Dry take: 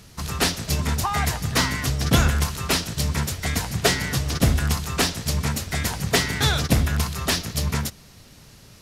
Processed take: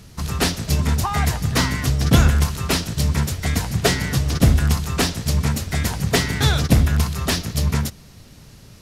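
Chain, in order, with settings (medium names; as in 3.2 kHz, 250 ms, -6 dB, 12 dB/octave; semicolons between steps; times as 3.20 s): bass shelf 390 Hz +5.5 dB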